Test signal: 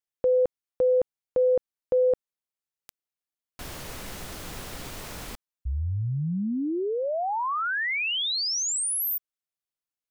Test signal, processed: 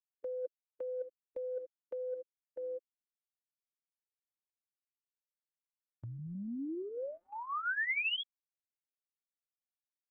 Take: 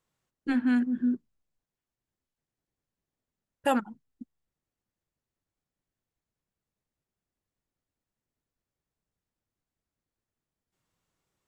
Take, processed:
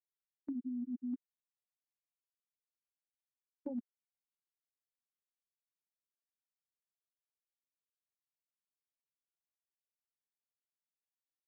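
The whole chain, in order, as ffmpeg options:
ffmpeg -i in.wav -filter_complex "[0:a]aecho=1:1:635|1270|1905|2540|3175:0.224|0.107|0.0516|0.0248|0.0119,acrusher=bits=7:mix=0:aa=0.000001,highshelf=frequency=3100:gain=-10.5,aeval=exprs='val(0)+0.00562*(sin(2*PI*60*n/s)+sin(2*PI*2*60*n/s)/2+sin(2*PI*3*60*n/s)/3+sin(2*PI*4*60*n/s)/4+sin(2*PI*5*60*n/s)/5)':channel_layout=same,highpass=140,afftfilt=real='re*gte(hypot(re,im),0.282)':imag='im*gte(hypot(re,im),0.282)':win_size=1024:overlap=0.75,asuperstop=centerf=720:order=4:qfactor=0.97,areverse,acompressor=threshold=-40dB:ratio=8:attack=96:release=252:knee=1:detection=peak,areverse,agate=range=-10dB:threshold=-51dB:ratio=16:release=102:detection=rms,aecho=1:1:3.4:0.62,acrossover=split=530|1300[link_01][link_02][link_03];[link_01]acompressor=threshold=-48dB:ratio=4[link_04];[link_02]acompressor=threshold=-57dB:ratio=4[link_05];[link_03]acompressor=threshold=-38dB:ratio=4[link_06];[link_04][link_05][link_06]amix=inputs=3:normalize=0,volume=6.5dB" out.wav

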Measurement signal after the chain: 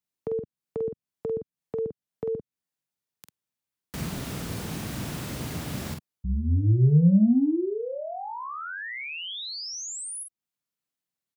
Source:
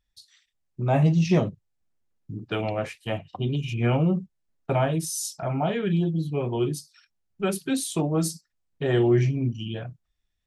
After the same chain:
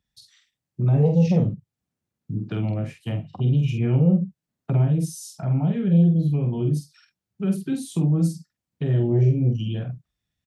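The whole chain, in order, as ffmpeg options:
ffmpeg -i in.wav -filter_complex "[0:a]acrossover=split=220[link_01][link_02];[link_01]aeval=exprs='0.188*sin(PI/2*2.24*val(0)/0.188)':channel_layout=same[link_03];[link_02]acompressor=threshold=-37dB:ratio=6[link_04];[link_03][link_04]amix=inputs=2:normalize=0,highpass=130,asplit=2[link_05][link_06];[link_06]adelay=47,volume=-5.5dB[link_07];[link_05][link_07]amix=inputs=2:normalize=0" out.wav

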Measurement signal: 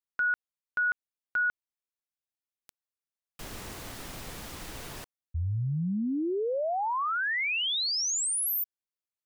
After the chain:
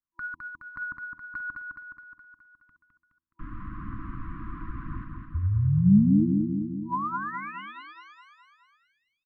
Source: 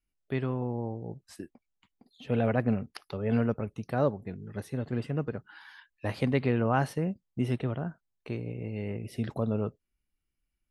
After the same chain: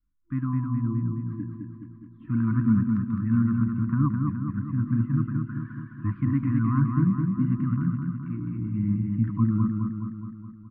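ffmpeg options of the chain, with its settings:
ffmpeg -i in.wav -filter_complex "[0:a]bandreject=frequency=82.06:width_type=h:width=4,bandreject=frequency=164.12:width_type=h:width=4,bandreject=frequency=246.18:width_type=h:width=4,bandreject=frequency=328.24:width_type=h:width=4,bandreject=frequency=410.3:width_type=h:width=4,bandreject=frequency=492.36:width_type=h:width=4,bandreject=frequency=574.42:width_type=h:width=4,bandreject=frequency=656.48:width_type=h:width=4,bandreject=frequency=738.54:width_type=h:width=4,bandreject=frequency=820.6:width_type=h:width=4,bandreject=frequency=902.66:width_type=h:width=4,afftfilt=real='re*(1-between(b*sr/4096,340,970))':imag='im*(1-between(b*sr/4096,340,970))':win_size=4096:overlap=0.75,lowpass=frequency=1300:width=0.5412,lowpass=frequency=1300:width=1.3066,adynamicequalizer=threshold=0.00282:dfrequency=200:dqfactor=6.4:tfrequency=200:tqfactor=6.4:attack=5:release=100:ratio=0.417:range=3:mode=boostabove:tftype=bell,acrossover=split=680|1000[link_01][link_02][link_03];[link_03]acompressor=threshold=-47dB:ratio=16:attack=3.7:release=288:knee=6:detection=peak[link_04];[link_01][link_02][link_04]amix=inputs=3:normalize=0,aphaser=in_gain=1:out_gain=1:delay=3.2:decay=0.32:speed=1:type=triangular,asplit=2[link_05][link_06];[link_06]aecho=0:1:210|420|630|840|1050|1260|1470|1680:0.631|0.372|0.22|0.13|0.0765|0.0451|0.0266|0.0157[link_07];[link_05][link_07]amix=inputs=2:normalize=0,volume=5.5dB" out.wav

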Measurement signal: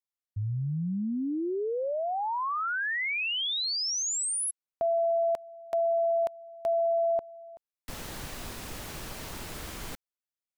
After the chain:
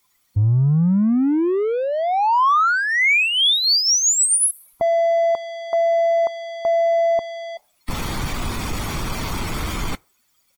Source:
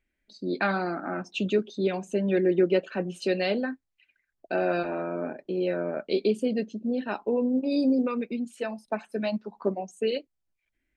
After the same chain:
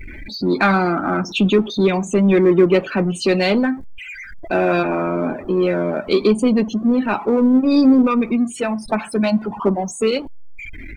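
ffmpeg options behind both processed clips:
ffmpeg -i in.wav -filter_complex "[0:a]aeval=exprs='val(0)+0.5*0.0133*sgn(val(0))':channel_layout=same,afftdn=noise_reduction=30:noise_floor=-44,asplit=2[link_01][link_02];[link_02]asoftclip=type=hard:threshold=-24.5dB,volume=-10dB[link_03];[link_01][link_03]amix=inputs=2:normalize=0,aecho=1:1:0.9:0.37,volume=8.5dB" out.wav

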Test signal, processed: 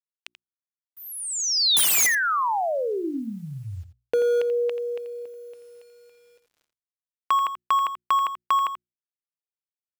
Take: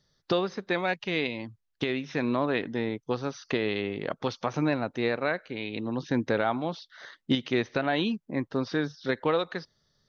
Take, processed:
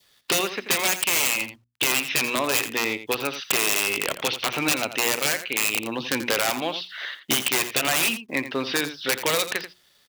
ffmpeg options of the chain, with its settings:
ffmpeg -i in.wav -filter_complex "[0:a]lowpass=frequency=2700:width_type=q:width=3.7,asplit=2[link_01][link_02];[link_02]asoftclip=type=hard:threshold=-22.5dB,volume=-4.5dB[link_03];[link_01][link_03]amix=inputs=2:normalize=0,equalizer=frequency=170:width=1.6:gain=-8.5,crystalizer=i=5.5:c=0,aeval=exprs='(mod(3.55*val(0)+1,2)-1)/3.55':channel_layout=same,highpass=120,acompressor=threshold=-19dB:ratio=3,acrusher=bits=9:mix=0:aa=0.000001,adynamicequalizer=threshold=0.0112:dfrequency=1600:dqfactor=2.7:tfrequency=1600:tqfactor=2.7:attack=5:release=100:ratio=0.375:range=2:mode=cutabove:tftype=bell,bandreject=frequency=60:width_type=h:width=6,bandreject=frequency=120:width_type=h:width=6,bandreject=frequency=180:width_type=h:width=6,bandreject=frequency=240:width_type=h:width=6,bandreject=frequency=300:width_type=h:width=6,bandreject=frequency=360:width_type=h:width=6,asplit=2[link_04][link_05];[link_05]aecho=0:1:85:0.251[link_06];[link_04][link_06]amix=inputs=2:normalize=0" out.wav

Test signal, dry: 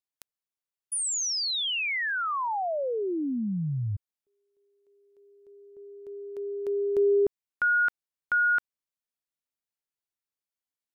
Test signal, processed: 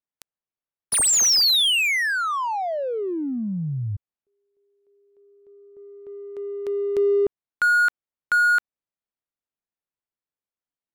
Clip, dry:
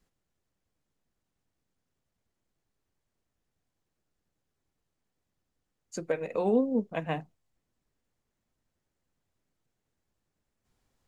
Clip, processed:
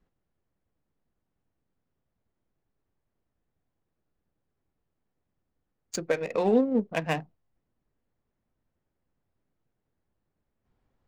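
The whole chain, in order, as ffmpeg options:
ffmpeg -i in.wav -af "highshelf=frequency=2500:gain=11.5,adynamicsmooth=sensitivity=7.5:basefreq=1400,volume=2.5dB" out.wav

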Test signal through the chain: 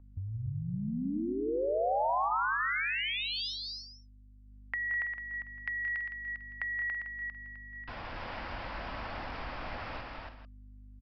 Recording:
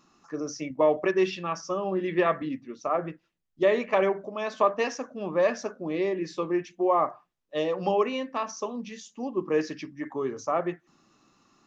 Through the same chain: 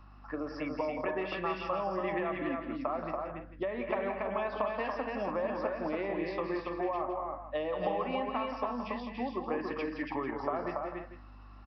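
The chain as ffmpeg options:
ffmpeg -i in.wav -filter_complex "[0:a]aeval=exprs='val(0)+0.00251*(sin(2*PI*50*n/s)+sin(2*PI*2*50*n/s)/2+sin(2*PI*3*50*n/s)/3+sin(2*PI*4*50*n/s)/4+sin(2*PI*5*50*n/s)/5)':channel_layout=same,equalizer=frequency=160:width_type=o:width=0.67:gain=-8,equalizer=frequency=400:width_type=o:width=0.67:gain=-11,equalizer=frequency=4000:width_type=o:width=0.67:gain=-9,acrossover=split=280[link_01][link_02];[link_02]acompressor=threshold=-33dB:ratio=6[link_03];[link_01][link_03]amix=inputs=2:normalize=0,bandreject=frequency=1200:width=28,acompressor=threshold=-37dB:ratio=6,equalizer=frequency=780:width_type=o:width=2.9:gain=7.5,aecho=1:1:175|203|283|331|445:0.335|0.237|0.668|0.2|0.211,aresample=11025,aresample=44100" out.wav

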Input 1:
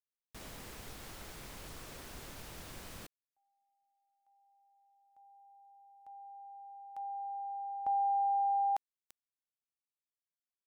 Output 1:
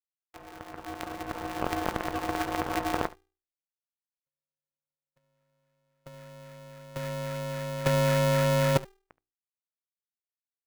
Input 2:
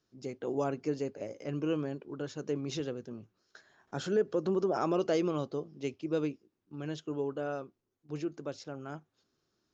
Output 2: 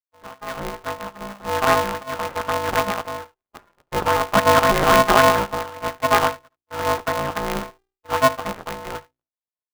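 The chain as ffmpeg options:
ffmpeg -i in.wav -filter_complex "[0:a]afftfilt=real='real(if(lt(b,1008),b+24*(1-2*mod(floor(b/24),2)),b),0)':imag='imag(if(lt(b,1008),b+24*(1-2*mod(floor(b/24),2)),b),0)':win_size=2048:overlap=0.75,adynamicequalizer=threshold=0.00447:dfrequency=530:dqfactor=1.1:tfrequency=530:tqfactor=1.1:attack=5:release=100:ratio=0.45:range=2:mode=boostabove:tftype=bell,afftfilt=real='hypot(re,im)*cos(PI*b)':imag='0':win_size=1024:overlap=0.75,acontrast=77,agate=range=-50dB:threshold=-59dB:ratio=3:release=28:detection=peak,acrusher=samples=16:mix=1:aa=0.000001:lfo=1:lforange=16:lforate=3.7,lowshelf=frequency=110:gain=-4.5,bandreject=frequency=60:width_type=h:width=6,bandreject=frequency=120:width_type=h:width=6,bandreject=frequency=180:width_type=h:width=6,asplit=2[link_01][link_02];[link_02]aecho=0:1:73:0.1[link_03];[link_01][link_03]amix=inputs=2:normalize=0,dynaudnorm=framelen=320:gausssize=9:maxgain=14dB,lowpass=1800,aeval=exprs='val(0)*sgn(sin(2*PI*200*n/s))':channel_layout=same" out.wav

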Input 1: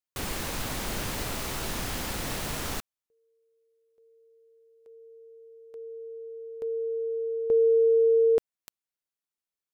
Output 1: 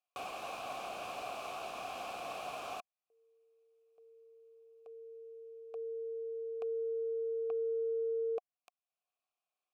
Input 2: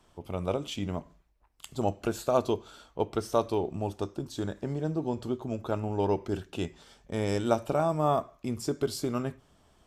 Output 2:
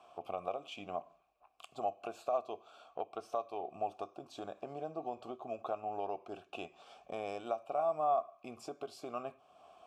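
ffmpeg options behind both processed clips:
ffmpeg -i in.wav -filter_complex "[0:a]highshelf=frequency=6100:gain=10,acompressor=threshold=-34dB:ratio=6:attack=1.1:release=520:knee=1:detection=rms,aeval=exprs='0.0794*(cos(1*acos(clip(val(0)/0.0794,-1,1)))-cos(1*PI/2))+0.00112*(cos(3*acos(clip(val(0)/0.0794,-1,1)))-cos(3*PI/2))+0.000562*(cos(5*acos(clip(val(0)/0.0794,-1,1)))-cos(5*PI/2))':channel_layout=same,asplit=3[link_01][link_02][link_03];[link_01]bandpass=frequency=730:width_type=q:width=8,volume=0dB[link_04];[link_02]bandpass=frequency=1090:width_type=q:width=8,volume=-6dB[link_05];[link_03]bandpass=frequency=2440:width_type=q:width=8,volume=-9dB[link_06];[link_04][link_05][link_06]amix=inputs=3:normalize=0,volume=15.5dB" out.wav

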